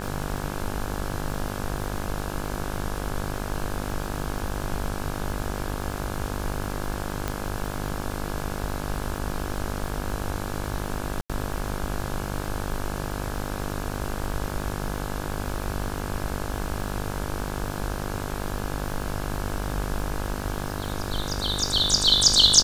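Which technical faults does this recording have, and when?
buzz 50 Hz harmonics 34 -32 dBFS
crackle 200/s -35 dBFS
7.28 pop -12 dBFS
11.21–11.3 gap 86 ms

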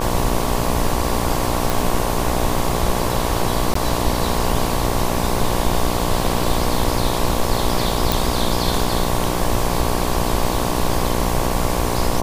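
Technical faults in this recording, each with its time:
buzz 60 Hz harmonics 19 -23 dBFS
1.7 pop
3.74–3.75 gap 14 ms
8.12 pop

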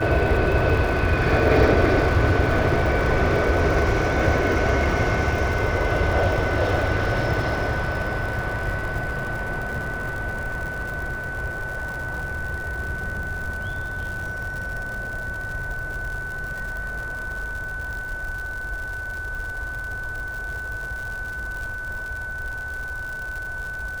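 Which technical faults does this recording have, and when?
crackle 140/s -30 dBFS
tone 1500 Hz -29 dBFS

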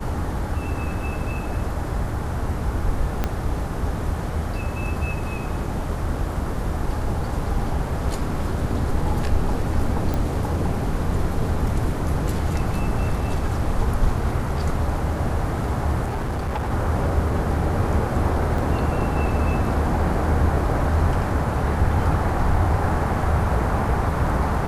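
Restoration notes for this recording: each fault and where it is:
3.24 pop -9 dBFS
10.14 pop
16.04–16.71 clipped -21.5 dBFS
18.58 gap 3.3 ms

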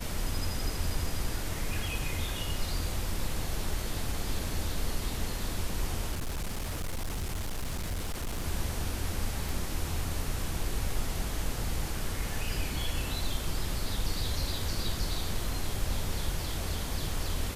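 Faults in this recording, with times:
6.11–8.44 clipped -29.5 dBFS
9.49 pop

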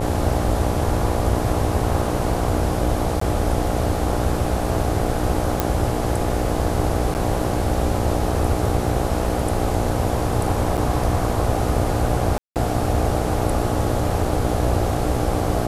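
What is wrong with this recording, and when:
buzz 60 Hz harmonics 14 -25 dBFS
3.2–3.21 gap 14 ms
5.6 pop
7.14–7.15 gap 9.7 ms
10.77–10.78 gap 6.5 ms
12.38–12.56 gap 0.178 s

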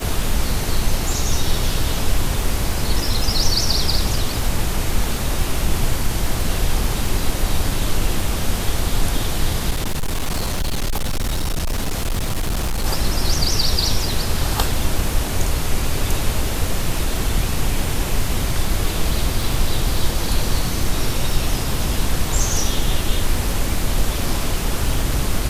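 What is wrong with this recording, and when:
crackle 33/s -24 dBFS
9.7–12.86 clipped -17 dBFS

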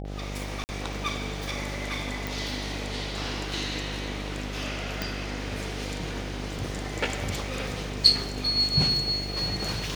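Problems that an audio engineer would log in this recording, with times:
buzz 50 Hz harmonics 16 -35 dBFS
0.64–0.69 gap 49 ms
2.27 pop
5.02 pop

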